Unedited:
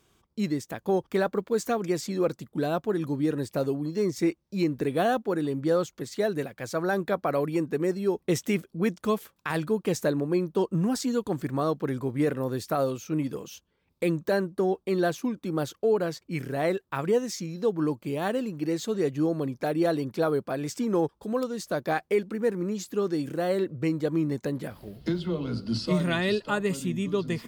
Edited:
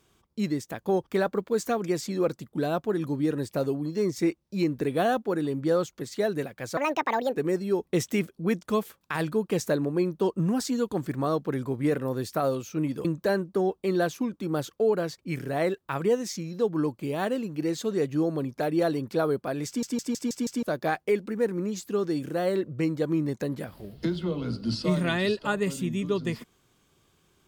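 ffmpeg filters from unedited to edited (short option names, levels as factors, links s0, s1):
-filter_complex "[0:a]asplit=10[s0][s1][s2][s3][s4][s5][s6][s7][s8][s9];[s0]atrim=end=6.774[s10];[s1]atrim=start=6.77:end=7.72,asetpts=PTS-STARTPTS,asetrate=70119,aresample=44100,atrim=end_sample=26349,asetpts=PTS-STARTPTS[s11];[s2]atrim=start=7.716:end=13.402[s12];[s3]atrim=start=14.078:end=20.862[s13];[s4]atrim=start=20.698:end=20.862[s14];[s5]atrim=start=20.698:end=20.862[s15];[s6]atrim=start=20.698:end=20.862[s16];[s7]atrim=start=20.698:end=20.862[s17];[s8]atrim=start=20.698:end=20.862[s18];[s9]atrim=start=21.658[s19];[s10][s11]acrossfade=d=0.004:c1=hsin:c2=hsin[s20];[s20][s12]acrossfade=d=0.004:c1=hsin:c2=hsin[s21];[s21][s13]acrossfade=d=0.004:c1=hsin:c2=hsin[s22];[s22][s14]acrossfade=d=0.004:c1=hsin:c2=hsin[s23];[s23][s15]acrossfade=d=0.004:c1=hsin:c2=hsin[s24];[s24][s16]acrossfade=d=0.004:c1=hsin:c2=hsin[s25];[s25][s17]acrossfade=d=0.004:c1=hsin:c2=hsin[s26];[s26][s18]acrossfade=d=0.004:c1=hsin:c2=hsin[s27];[s27][s19]acrossfade=d=0.004:c1=hsin:c2=hsin"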